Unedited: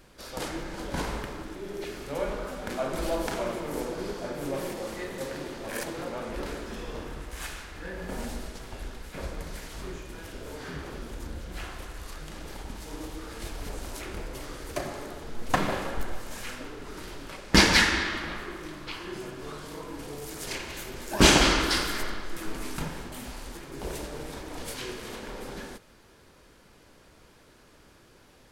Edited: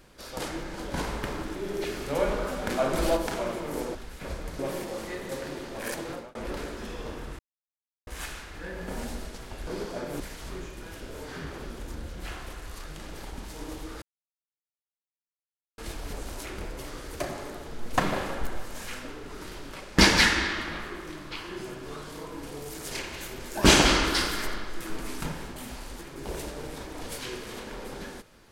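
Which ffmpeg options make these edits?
-filter_complex "[0:a]asplit=10[s0][s1][s2][s3][s4][s5][s6][s7][s8][s9];[s0]atrim=end=1.232[s10];[s1]atrim=start=1.228:end=3.172,asetpts=PTS-STARTPTS,volume=1.68[s11];[s2]atrim=start=3.168:end=3.952[s12];[s3]atrim=start=8.878:end=9.522[s13];[s4]atrim=start=4.478:end=6.24,asetpts=PTS-STARTPTS,afade=t=out:st=1.512:d=0.25[s14];[s5]atrim=start=6.24:end=7.28,asetpts=PTS-STARTPTS,afade=t=in:d=0.004:c=hsin,afade=t=out:st=1.036:d=0.004:c=hsin,apad=pad_dur=0.68[s15];[s6]atrim=start=7.28:end=8.882,asetpts=PTS-STARTPTS,afade=t=in:d=0.004:c=hsin[s16];[s7]atrim=start=3.948:end=4.482[s17];[s8]atrim=start=9.518:end=13.34,asetpts=PTS-STARTPTS,afade=t=out:st=3.818:d=0.004:c=hsin,apad=pad_dur=1.76[s18];[s9]atrim=start=13.34,asetpts=PTS-STARTPTS,afade=t=in:d=0.004:c=hsin[s19];[s10][s11]acrossfade=d=0.004:c1=hsin:c2=hsin[s20];[s20][s12]acrossfade=d=0.004:c1=hsin:c2=hsin[s21];[s21][s13]acrossfade=d=0.004:c1=hsin:c2=hsin[s22];[s14][s15][s16]concat=n=3:v=0:a=1[s23];[s22][s23]acrossfade=d=0.004:c1=hsin:c2=hsin[s24];[s24][s17]acrossfade=d=0.004:c1=hsin:c2=hsin[s25];[s18][s19]concat=n=2:v=0:a=1[s26];[s25][s26]acrossfade=d=0.004:c1=hsin:c2=hsin"

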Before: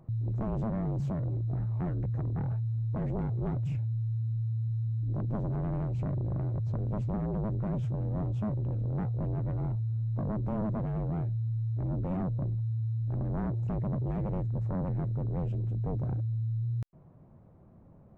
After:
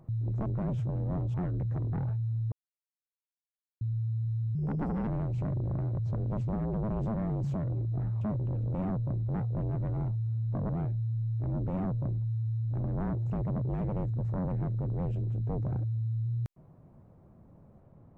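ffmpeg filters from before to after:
-filter_complex "[0:a]asplit=12[s0][s1][s2][s3][s4][s5][s6][s7][s8][s9][s10][s11];[s0]atrim=end=0.462[s12];[s1]atrim=start=7.508:end=8.392[s13];[s2]atrim=start=1.768:end=2.95,asetpts=PTS-STARTPTS,afade=t=out:st=1.178:d=0.004:c=hsin[s14];[s3]atrim=start=2.95:end=4.24,asetpts=PTS-STARTPTS,volume=0[s15];[s4]atrim=start=4.24:end=4.984,asetpts=PTS-STARTPTS,afade=t=in:d=0.004:c=hsin[s16];[s5]atrim=start=4.98:end=5.68,asetpts=PTS-STARTPTS,asetrate=59094,aresample=44100,atrim=end_sample=23037,asetpts=PTS-STARTPTS[s17];[s6]atrim=start=5.676:end=7.512[s18];[s7]atrim=start=0.458:end=1.772[s19];[s8]atrim=start=8.388:end=8.922[s20];[s9]atrim=start=12.058:end=12.602[s21];[s10]atrim=start=8.918:end=10.332[s22];[s11]atrim=start=11.058[s23];[s12][s13]acrossfade=d=0.004:c1=hsin:c2=hsin[s24];[s14][s15][s16]concat=n=3:v=0:a=1[s25];[s24][s25]acrossfade=d=0.004:c1=hsin:c2=hsin[s26];[s26][s17]acrossfade=d=0.004:c1=hsin:c2=hsin[s27];[s27][s18]acrossfade=d=0.004:c1=hsin:c2=hsin[s28];[s28][s19]acrossfade=d=0.004:c1=hsin:c2=hsin[s29];[s29][s20]acrossfade=d=0.004:c1=hsin:c2=hsin[s30];[s30][s21]acrossfade=d=0.004:c1=hsin:c2=hsin[s31];[s31][s22]acrossfade=d=0.004:c1=hsin:c2=hsin[s32];[s32][s23]acrossfade=d=0.004:c1=hsin:c2=hsin"

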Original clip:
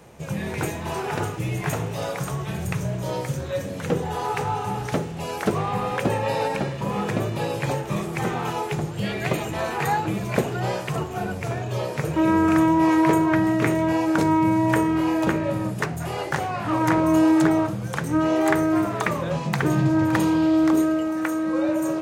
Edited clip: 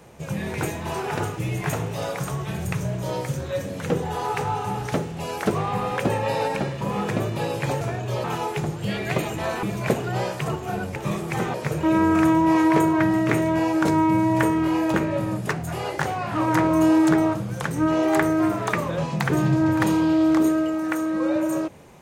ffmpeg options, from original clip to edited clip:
-filter_complex "[0:a]asplit=6[s0][s1][s2][s3][s4][s5];[s0]atrim=end=7.812[s6];[s1]atrim=start=11.438:end=11.872[s7];[s2]atrim=start=8.388:end=9.782[s8];[s3]atrim=start=10.108:end=11.442[s9];[s4]atrim=start=7.808:end=8.392[s10];[s5]atrim=start=11.868[s11];[s6][s7]acrossfade=d=0.004:c1=hsin:c2=hsin[s12];[s12][s8]acrossfade=d=0.004:c1=hsin:c2=hsin[s13];[s13][s9]acrossfade=d=0.004:c1=hsin:c2=hsin[s14];[s14][s10]acrossfade=d=0.004:c1=hsin:c2=hsin[s15];[s15][s11]acrossfade=d=0.004:c1=hsin:c2=hsin"

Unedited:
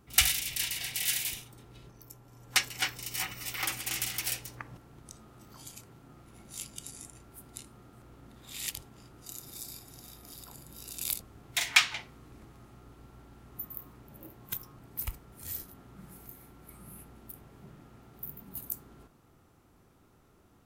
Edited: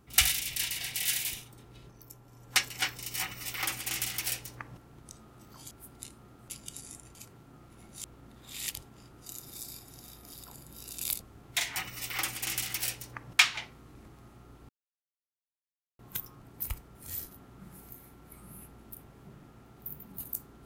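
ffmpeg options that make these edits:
-filter_complex "[0:a]asplit=9[s0][s1][s2][s3][s4][s5][s6][s7][s8];[s0]atrim=end=5.712[s9];[s1]atrim=start=7.248:end=8.042[s10];[s2]atrim=start=6.598:end=7.252[s11];[s3]atrim=start=5.708:end=6.602[s12];[s4]atrim=start=8.038:end=11.762[s13];[s5]atrim=start=3.198:end=4.832[s14];[s6]atrim=start=11.758:end=13.06,asetpts=PTS-STARTPTS,afade=t=out:st=1.298:d=0.004:c=hsin[s15];[s7]atrim=start=13.06:end=14.36,asetpts=PTS-STARTPTS,volume=0[s16];[s8]atrim=start=14.36,asetpts=PTS-STARTPTS,afade=t=in:d=0.004:c=hsin[s17];[s9][s10]acrossfade=d=0.004:c1=hsin:c2=hsin[s18];[s18][s11]acrossfade=d=0.004:c1=hsin:c2=hsin[s19];[s19][s12]acrossfade=d=0.004:c1=hsin:c2=hsin[s20];[s20][s13]acrossfade=d=0.004:c1=hsin:c2=hsin[s21];[s21][s14]acrossfade=d=0.004:c1=hsin:c2=hsin[s22];[s15][s16][s17]concat=n=3:v=0:a=1[s23];[s22][s23]acrossfade=d=0.004:c1=hsin:c2=hsin"

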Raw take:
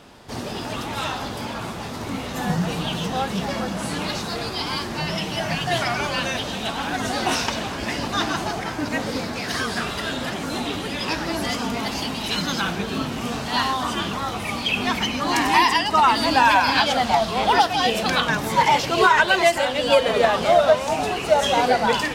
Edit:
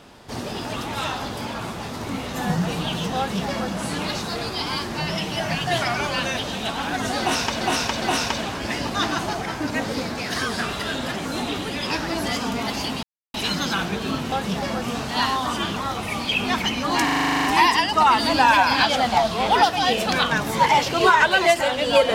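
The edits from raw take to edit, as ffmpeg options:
-filter_complex "[0:a]asplit=16[s0][s1][s2][s3][s4][s5][s6][s7][s8][s9][s10][s11][s12][s13][s14][s15];[s0]atrim=end=7.612[s16];[s1]atrim=start=7.198:end=7.612[s17];[s2]atrim=start=7.198:end=12.21,asetpts=PTS-STARTPTS,afade=t=out:st=5.008:d=0.004:c=hsin,apad=pad_dur=0.31[s18];[s3]atrim=start=12.21:end=13.192,asetpts=PTS-STARTPTS,afade=t=in:d=0.004:c=hsin[s19];[s4]atrim=start=3.178:end=3.682[s20];[s5]atrim=start=13.188:end=15.452[s21];[s6]atrim=start=15.408:end=15.452[s22];[s7]atrim=start=15.408:end=15.452[s23];[s8]atrim=start=15.408:end=15.452[s24];[s9]atrim=start=15.408:end=15.452[s25];[s10]atrim=start=15.408:end=15.452[s26];[s11]atrim=start=15.408:end=15.452[s27];[s12]atrim=start=15.408:end=15.452[s28];[s13]atrim=start=15.408:end=15.452[s29];[s14]atrim=start=15.408:end=15.452[s30];[s15]atrim=start=15.408[s31];[s16][s17]acrossfade=d=0.004:c1=hsin:c2=hsin[s32];[s18][s19]concat=n=2:v=0:a=1[s33];[s32][s33]acrossfade=d=0.004:c1=hsin:c2=hsin[s34];[s34][s20]acrossfade=d=0.004:c1=hsin:c2=hsin[s35];[s35][s21]acrossfade=d=0.004:c1=hsin:c2=hsin[s36];[s36][s22]acrossfade=d=0.004:c1=hsin:c2=hsin[s37];[s37][s23]acrossfade=d=0.004:c1=hsin:c2=hsin[s38];[s38][s24]acrossfade=d=0.004:c1=hsin:c2=hsin[s39];[s39][s25]acrossfade=d=0.004:c1=hsin:c2=hsin[s40];[s40][s26]acrossfade=d=0.004:c1=hsin:c2=hsin[s41];[s41][s27]acrossfade=d=0.004:c1=hsin:c2=hsin[s42];[s42][s28]acrossfade=d=0.004:c1=hsin:c2=hsin[s43];[s43][s29]acrossfade=d=0.004:c1=hsin:c2=hsin[s44];[s44][s30]acrossfade=d=0.004:c1=hsin:c2=hsin[s45];[s45][s31]acrossfade=d=0.004:c1=hsin:c2=hsin"

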